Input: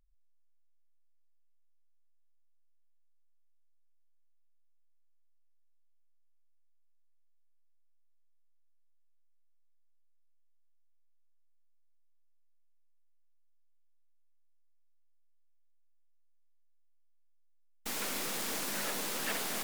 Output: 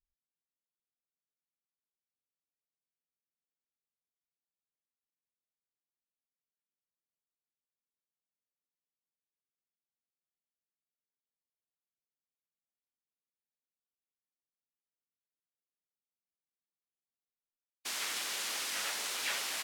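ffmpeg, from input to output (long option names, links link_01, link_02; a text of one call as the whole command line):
ffmpeg -i in.wav -filter_complex "[0:a]afftfilt=real='re*gte(hypot(re,im),0.00178)':imag='im*gte(hypot(re,im),0.00178)':win_size=1024:overlap=0.75,areverse,acompressor=mode=upward:threshold=-44dB:ratio=2.5,areverse,asplit=4[link_01][link_02][link_03][link_04];[link_02]asetrate=37084,aresample=44100,atempo=1.18921,volume=-2dB[link_05];[link_03]asetrate=55563,aresample=44100,atempo=0.793701,volume=-4dB[link_06];[link_04]asetrate=66075,aresample=44100,atempo=0.66742,volume=-5dB[link_07];[link_01][link_05][link_06][link_07]amix=inputs=4:normalize=0,bandpass=frequency=3700:width_type=q:width=0.5:csg=0" out.wav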